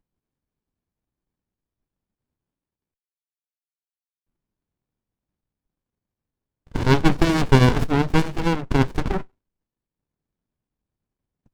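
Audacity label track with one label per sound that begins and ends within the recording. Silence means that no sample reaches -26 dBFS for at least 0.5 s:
6.750000	9.220000	sound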